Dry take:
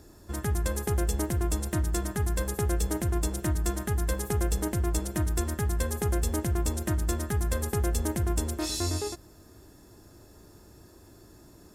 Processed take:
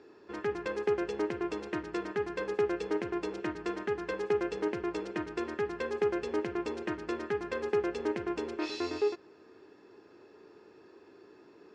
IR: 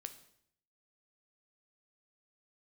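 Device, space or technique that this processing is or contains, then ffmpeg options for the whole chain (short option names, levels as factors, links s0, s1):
phone earpiece: -af "highpass=340,equalizer=f=420:t=q:w=4:g=9,equalizer=f=640:t=q:w=4:g=-7,equalizer=f=2500:t=q:w=4:g=5,equalizer=f=3600:t=q:w=4:g=-6,lowpass=f=4000:w=0.5412,lowpass=f=4000:w=1.3066"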